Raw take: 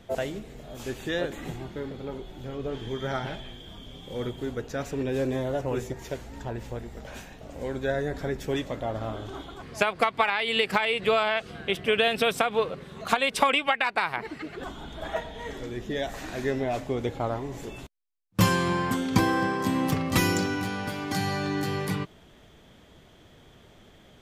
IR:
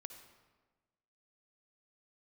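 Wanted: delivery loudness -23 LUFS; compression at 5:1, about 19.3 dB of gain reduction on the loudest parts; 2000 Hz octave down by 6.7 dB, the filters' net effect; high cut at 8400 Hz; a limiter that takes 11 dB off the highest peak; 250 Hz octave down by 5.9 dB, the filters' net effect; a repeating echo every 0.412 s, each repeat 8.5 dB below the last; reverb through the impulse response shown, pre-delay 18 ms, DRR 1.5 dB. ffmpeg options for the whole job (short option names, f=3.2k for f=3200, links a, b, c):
-filter_complex "[0:a]lowpass=8.4k,equalizer=f=250:t=o:g=-8,equalizer=f=2k:t=o:g=-9,acompressor=threshold=-42dB:ratio=5,alimiter=level_in=12dB:limit=-24dB:level=0:latency=1,volume=-12dB,aecho=1:1:412|824|1236|1648:0.376|0.143|0.0543|0.0206,asplit=2[a][b];[1:a]atrim=start_sample=2205,adelay=18[c];[b][c]afir=irnorm=-1:irlink=0,volume=3.5dB[d];[a][d]amix=inputs=2:normalize=0,volume=20.5dB"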